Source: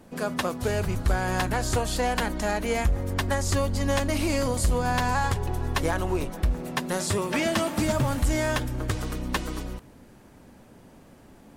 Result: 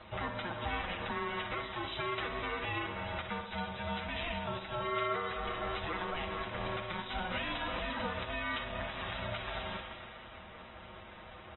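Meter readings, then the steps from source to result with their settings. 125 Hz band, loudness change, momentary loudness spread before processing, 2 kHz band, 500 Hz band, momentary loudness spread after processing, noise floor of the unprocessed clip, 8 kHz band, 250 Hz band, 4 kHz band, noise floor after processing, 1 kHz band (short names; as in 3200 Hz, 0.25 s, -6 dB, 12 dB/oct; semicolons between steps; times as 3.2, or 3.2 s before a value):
-16.5 dB, -10.5 dB, 5 LU, -6.0 dB, -11.0 dB, 13 LU, -52 dBFS, under -40 dB, -14.0 dB, -6.0 dB, -51 dBFS, -7.0 dB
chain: tilt +4 dB/oct; soft clip -10 dBFS, distortion -23 dB; LPF 3200 Hz 6 dB/oct; comb 7 ms, depth 71%; Schroeder reverb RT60 3.3 s, combs from 31 ms, DRR 14.5 dB; compressor 4:1, threshold -37 dBFS, peak gain reduction 14.5 dB; HPF 180 Hz 24 dB/oct; limiter -31 dBFS, peak gain reduction 10.5 dB; on a send: flutter echo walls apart 10.4 m, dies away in 0.42 s; on the sum: ring modulator 360 Hz; gain +6.5 dB; AAC 16 kbps 24000 Hz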